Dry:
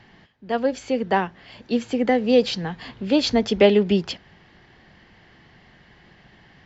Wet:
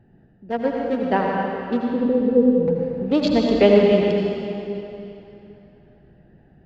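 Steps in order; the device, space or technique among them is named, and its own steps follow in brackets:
adaptive Wiener filter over 41 samples
0:01.88–0:02.68: Butterworth low-pass 540 Hz 96 dB per octave
swimming-pool hall (convolution reverb RT60 3.1 s, pre-delay 72 ms, DRR −1 dB; high-shelf EQ 4,400 Hz −8 dB)

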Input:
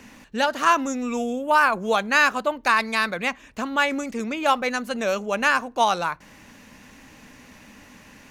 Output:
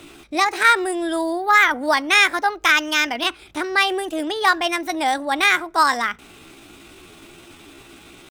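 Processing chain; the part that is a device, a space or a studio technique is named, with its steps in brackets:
chipmunk voice (pitch shifter +5.5 semitones)
level +3.5 dB

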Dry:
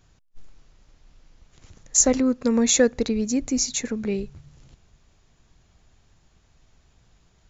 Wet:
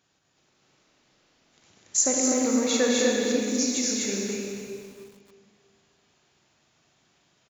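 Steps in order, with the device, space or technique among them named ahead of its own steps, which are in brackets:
stadium PA (high-pass filter 210 Hz 12 dB per octave; parametric band 3,300 Hz +3.5 dB 2.1 octaves; loudspeakers that aren't time-aligned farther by 73 metres −6 dB, 86 metres −2 dB; convolution reverb RT60 1.9 s, pre-delay 31 ms, DRR 0.5 dB)
0:02.20–0:03.42: low-pass filter 5,500 Hz 12 dB per octave
repeating echo 306 ms, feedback 18%, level −12.5 dB
feedback echo at a low word length 275 ms, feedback 35%, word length 6 bits, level −12 dB
level −7 dB

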